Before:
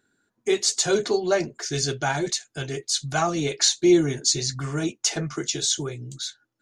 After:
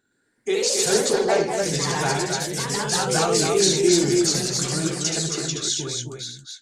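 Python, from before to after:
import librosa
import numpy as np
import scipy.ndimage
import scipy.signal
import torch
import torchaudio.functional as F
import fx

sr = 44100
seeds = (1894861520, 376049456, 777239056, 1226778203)

y = fx.echo_multitap(x, sr, ms=(75, 253, 273), db=(-6.0, -13.5, -4.5))
y = fx.echo_pitch(y, sr, ms=120, semitones=2, count=3, db_per_echo=-3.0)
y = y * 10.0 ** (-2.0 / 20.0)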